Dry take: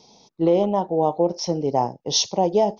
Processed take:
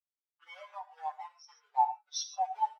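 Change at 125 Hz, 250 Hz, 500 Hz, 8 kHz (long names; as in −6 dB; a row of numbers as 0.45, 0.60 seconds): below −40 dB, below −40 dB, −32.0 dB, can't be measured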